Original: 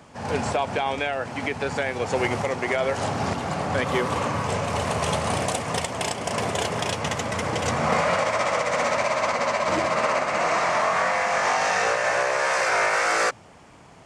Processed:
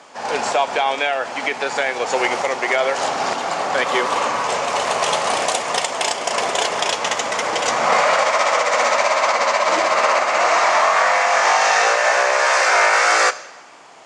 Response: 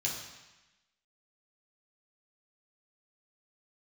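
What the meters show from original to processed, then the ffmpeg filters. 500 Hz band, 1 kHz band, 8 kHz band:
+5.0 dB, +7.5 dB, +8.0 dB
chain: -filter_complex "[0:a]highpass=500,lowpass=7.7k,asplit=2[a][b];[1:a]atrim=start_sample=2205,highshelf=f=6.3k:g=9.5[c];[b][c]afir=irnorm=-1:irlink=0,volume=-17dB[d];[a][d]amix=inputs=2:normalize=0,volume=7.5dB"

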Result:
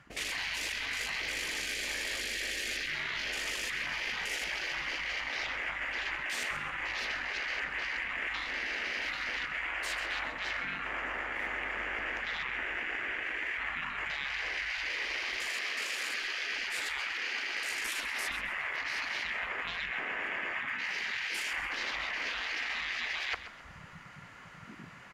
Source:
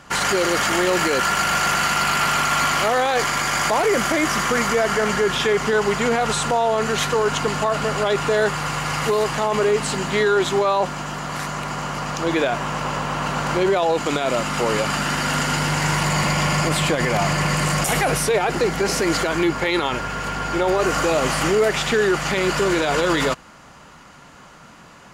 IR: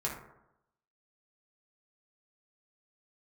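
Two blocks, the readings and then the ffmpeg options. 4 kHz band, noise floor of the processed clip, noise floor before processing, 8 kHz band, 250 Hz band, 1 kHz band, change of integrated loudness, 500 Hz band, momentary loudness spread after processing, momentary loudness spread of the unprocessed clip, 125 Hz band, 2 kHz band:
-11.0 dB, -50 dBFS, -45 dBFS, -17.0 dB, -27.5 dB, -20.5 dB, -13.5 dB, -28.5 dB, 2 LU, 6 LU, -30.0 dB, -8.0 dB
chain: -filter_complex "[0:a]afftfilt=real='re*lt(hypot(re,im),0.112)':imag='im*lt(hypot(re,im),0.112)':win_size=1024:overlap=0.75,afwtdn=0.02,equalizer=f=125:t=o:w=1:g=-4,equalizer=f=2k:t=o:w=1:g=12,equalizer=f=8k:t=o:w=1:g=-3,areverse,acompressor=threshold=-40dB:ratio=5,areverse,asplit=5[a][b][c][d][e];[b]adelay=132,afreqshift=-37,volume=-13dB[f];[c]adelay=264,afreqshift=-74,volume=-21.9dB[g];[d]adelay=396,afreqshift=-111,volume=-30.7dB[h];[e]adelay=528,afreqshift=-148,volume=-39.6dB[i];[a][f][g][h][i]amix=inputs=5:normalize=0,volume=5dB"

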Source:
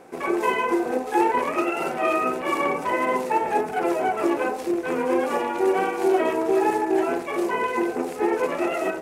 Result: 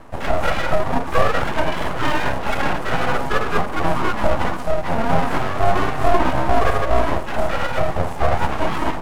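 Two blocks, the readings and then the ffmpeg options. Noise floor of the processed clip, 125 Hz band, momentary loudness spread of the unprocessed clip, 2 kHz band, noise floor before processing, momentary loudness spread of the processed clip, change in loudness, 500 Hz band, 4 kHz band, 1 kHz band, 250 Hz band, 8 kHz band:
-26 dBFS, +21.0 dB, 4 LU, +4.5 dB, -33 dBFS, 4 LU, +2.0 dB, +0.5 dB, +9.0 dB, +3.0 dB, -1.0 dB, +2.0 dB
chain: -af "tiltshelf=f=910:g=6,afreqshift=-32,aeval=exprs='abs(val(0))':c=same,volume=4.5dB"

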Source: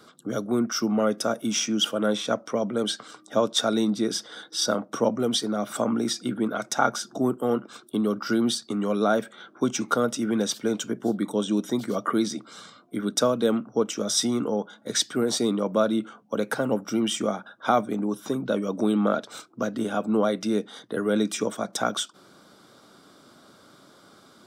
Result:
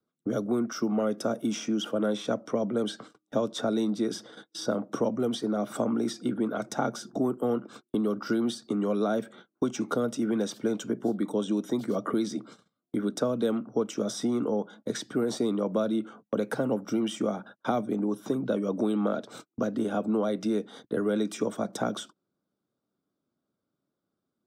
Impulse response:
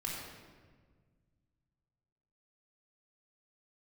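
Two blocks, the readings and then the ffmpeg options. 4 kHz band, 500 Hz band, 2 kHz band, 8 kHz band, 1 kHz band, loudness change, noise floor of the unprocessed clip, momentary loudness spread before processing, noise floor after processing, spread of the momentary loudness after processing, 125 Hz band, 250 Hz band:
-11.0 dB, -3.0 dB, -7.5 dB, -11.0 dB, -6.5 dB, -3.5 dB, -55 dBFS, 7 LU, -84 dBFS, 5 LU, -2.5 dB, -2.5 dB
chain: -filter_complex "[0:a]tiltshelf=f=660:g=7.5,agate=range=-32dB:threshold=-43dB:ratio=16:detection=peak,acrossover=split=290|740|2100[a][b][c][d];[a]acompressor=threshold=-35dB:ratio=4[e];[b]acompressor=threshold=-28dB:ratio=4[f];[c]acompressor=threshold=-35dB:ratio=4[g];[d]acompressor=threshold=-37dB:ratio=4[h];[e][f][g][h]amix=inputs=4:normalize=0"

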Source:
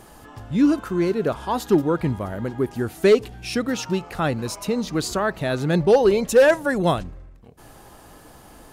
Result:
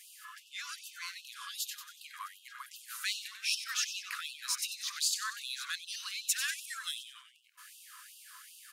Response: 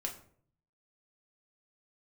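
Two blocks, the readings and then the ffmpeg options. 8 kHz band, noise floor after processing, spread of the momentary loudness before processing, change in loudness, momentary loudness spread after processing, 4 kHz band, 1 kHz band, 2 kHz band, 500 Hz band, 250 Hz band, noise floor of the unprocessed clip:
+0.5 dB, -60 dBFS, 11 LU, -14.5 dB, 19 LU, -1.0 dB, -19.0 dB, -10.0 dB, under -40 dB, under -40 dB, -47 dBFS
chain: -filter_complex "[0:a]asplit=6[a][b][c][d][e][f];[b]adelay=94,afreqshift=-99,volume=-10dB[g];[c]adelay=188,afreqshift=-198,volume=-16dB[h];[d]adelay=282,afreqshift=-297,volume=-22dB[i];[e]adelay=376,afreqshift=-396,volume=-28.1dB[j];[f]adelay=470,afreqshift=-495,volume=-34.1dB[k];[a][g][h][i][j][k]amix=inputs=6:normalize=0,acrossover=split=340|3000[l][m][n];[m]acompressor=threshold=-32dB:ratio=6[o];[l][o][n]amix=inputs=3:normalize=0,afftfilt=real='re*gte(b*sr/1024,960*pow(2600/960,0.5+0.5*sin(2*PI*2.6*pts/sr)))':imag='im*gte(b*sr/1024,960*pow(2600/960,0.5+0.5*sin(2*PI*2.6*pts/sr)))':win_size=1024:overlap=0.75"

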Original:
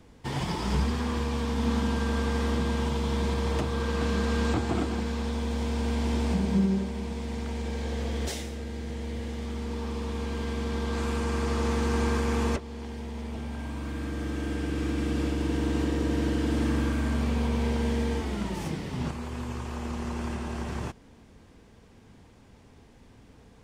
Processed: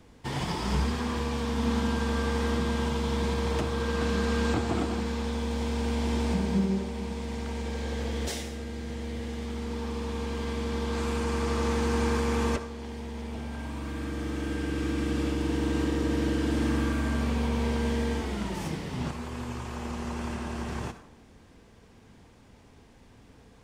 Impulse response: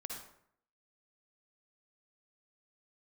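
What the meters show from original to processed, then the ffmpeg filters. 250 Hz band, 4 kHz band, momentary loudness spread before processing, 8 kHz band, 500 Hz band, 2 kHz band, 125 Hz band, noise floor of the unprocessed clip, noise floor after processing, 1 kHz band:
-0.5 dB, +1.0 dB, 8 LU, +1.0 dB, +0.5 dB, +1.0 dB, -1.5 dB, -54 dBFS, -55 dBFS, +0.5 dB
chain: -filter_complex "[0:a]asplit=2[a][b];[1:a]atrim=start_sample=2205,lowshelf=f=350:g=-9[c];[b][c]afir=irnorm=-1:irlink=0,volume=-2.5dB[d];[a][d]amix=inputs=2:normalize=0,volume=-2.5dB"

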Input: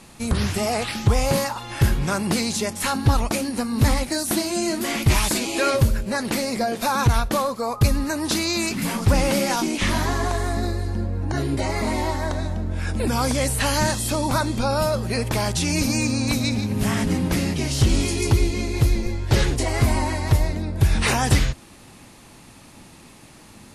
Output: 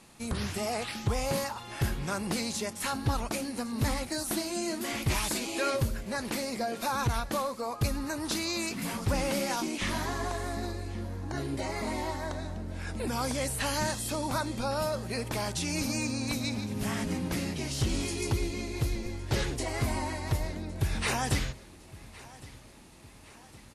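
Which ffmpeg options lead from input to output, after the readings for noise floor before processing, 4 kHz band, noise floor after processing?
-47 dBFS, -8.5 dB, -52 dBFS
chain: -filter_complex "[0:a]lowshelf=f=140:g=-5,asplit=2[a][b];[b]aecho=0:1:1111|2222|3333|4444:0.1|0.053|0.0281|0.0149[c];[a][c]amix=inputs=2:normalize=0,volume=-8.5dB"

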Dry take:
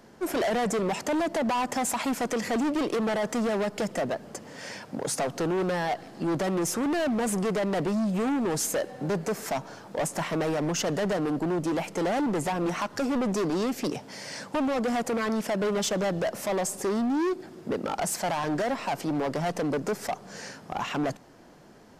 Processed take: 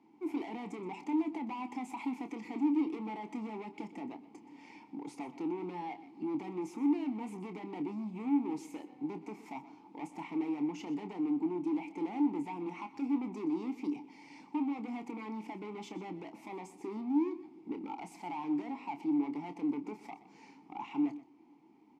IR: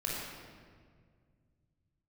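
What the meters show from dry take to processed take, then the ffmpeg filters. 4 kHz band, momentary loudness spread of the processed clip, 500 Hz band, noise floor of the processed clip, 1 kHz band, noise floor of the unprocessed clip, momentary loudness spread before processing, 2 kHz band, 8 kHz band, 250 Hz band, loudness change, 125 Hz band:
under -20 dB, 14 LU, -16.5 dB, -59 dBFS, -11.5 dB, -49 dBFS, 7 LU, -16.5 dB, under -25 dB, -5.0 dB, -9.0 dB, -17.5 dB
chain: -filter_complex "[0:a]asplit=3[a][b][c];[a]bandpass=f=300:t=q:w=8,volume=0dB[d];[b]bandpass=f=870:t=q:w=8,volume=-6dB[e];[c]bandpass=f=2.24k:t=q:w=8,volume=-9dB[f];[d][e][f]amix=inputs=3:normalize=0,highshelf=f=7.2k:g=7.5,asplit=2[g][h];[h]adelay=28,volume=-10dB[i];[g][i]amix=inputs=2:normalize=0,asplit=2[j][k];[k]aecho=0:1:124:0.15[l];[j][l]amix=inputs=2:normalize=0"

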